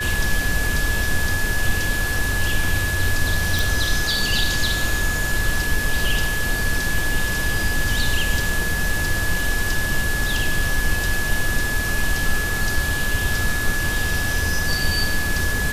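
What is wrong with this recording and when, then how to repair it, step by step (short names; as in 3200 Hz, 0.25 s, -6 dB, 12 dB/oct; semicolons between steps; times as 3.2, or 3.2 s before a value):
tone 1700 Hz -24 dBFS
3.59 pop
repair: de-click; notch 1700 Hz, Q 30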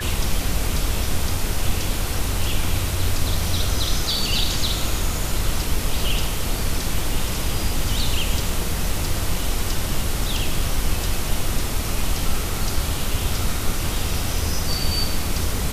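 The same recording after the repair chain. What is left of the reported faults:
none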